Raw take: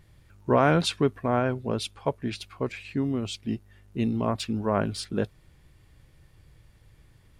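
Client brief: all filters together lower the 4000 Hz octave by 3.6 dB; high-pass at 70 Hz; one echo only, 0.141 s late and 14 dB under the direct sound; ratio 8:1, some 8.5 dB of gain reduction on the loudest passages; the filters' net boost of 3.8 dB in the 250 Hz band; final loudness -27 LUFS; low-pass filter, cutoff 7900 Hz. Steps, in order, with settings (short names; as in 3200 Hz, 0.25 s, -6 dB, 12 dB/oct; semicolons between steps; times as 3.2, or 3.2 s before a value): HPF 70 Hz; LPF 7900 Hz; bell 250 Hz +4.5 dB; bell 4000 Hz -4 dB; compressor 8:1, threshold -23 dBFS; echo 0.141 s -14 dB; gain +3.5 dB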